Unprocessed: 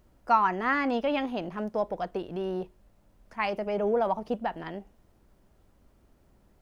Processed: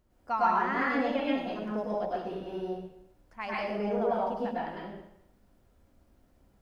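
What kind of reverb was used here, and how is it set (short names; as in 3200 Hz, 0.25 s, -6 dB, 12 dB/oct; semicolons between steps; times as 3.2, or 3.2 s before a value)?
plate-style reverb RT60 0.78 s, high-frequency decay 0.95×, pre-delay 90 ms, DRR -6 dB; gain -9 dB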